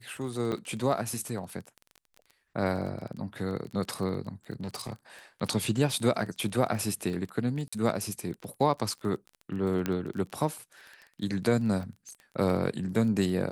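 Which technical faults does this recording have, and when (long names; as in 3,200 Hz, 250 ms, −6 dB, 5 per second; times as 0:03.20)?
surface crackle 19 per second −36 dBFS
0:00.52–0:00.53: drop-out 6.5 ms
0:04.60–0:04.93: clipping −31 dBFS
0:07.68–0:07.72: drop-out 45 ms
0:09.86: click −15 dBFS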